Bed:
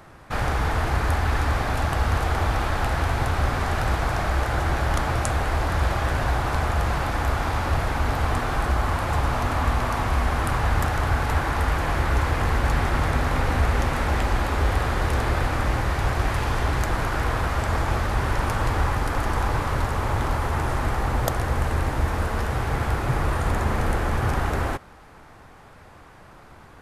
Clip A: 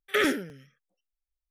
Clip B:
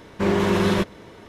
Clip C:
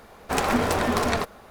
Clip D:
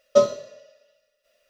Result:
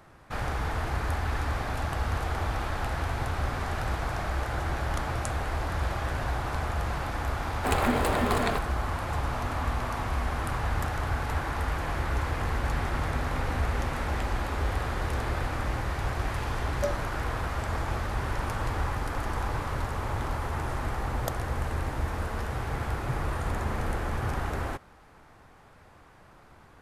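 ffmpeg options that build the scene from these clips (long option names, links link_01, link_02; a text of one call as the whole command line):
ffmpeg -i bed.wav -i cue0.wav -i cue1.wav -i cue2.wav -i cue3.wav -filter_complex "[0:a]volume=-7dB[link_01];[3:a]equalizer=frequency=5700:width=4.5:gain=-13.5,atrim=end=1.5,asetpts=PTS-STARTPTS,volume=-3.5dB,afade=type=in:duration=0.004:curve=hsin,afade=type=out:start_time=1.496:duration=0.004:curve=hsin,adelay=7340[link_02];[4:a]atrim=end=1.49,asetpts=PTS-STARTPTS,volume=-14.5dB,afade=type=in:duration=0.004:curve=hsin,afade=type=out:start_time=1.486:duration=0.004:curve=hsin,adelay=16670[link_03];[link_01][link_02][link_03]amix=inputs=3:normalize=0" out.wav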